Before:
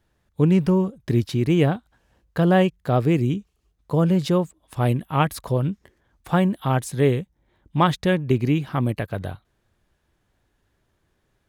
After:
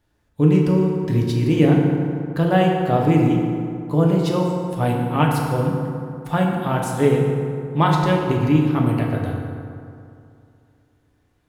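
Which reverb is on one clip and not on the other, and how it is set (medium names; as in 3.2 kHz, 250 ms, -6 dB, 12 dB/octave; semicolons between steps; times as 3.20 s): FDN reverb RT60 2.5 s, low-frequency decay 1×, high-frequency decay 0.5×, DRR -1.5 dB; trim -1.5 dB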